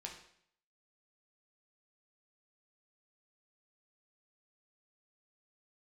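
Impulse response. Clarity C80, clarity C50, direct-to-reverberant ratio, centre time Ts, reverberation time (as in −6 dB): 10.5 dB, 6.5 dB, 0.0 dB, 26 ms, 0.65 s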